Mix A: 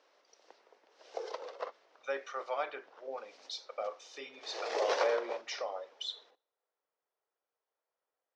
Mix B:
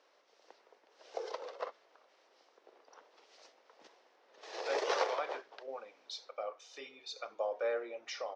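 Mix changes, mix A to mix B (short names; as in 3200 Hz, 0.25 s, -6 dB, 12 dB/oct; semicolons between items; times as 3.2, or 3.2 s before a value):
speech: entry +2.60 s; reverb: off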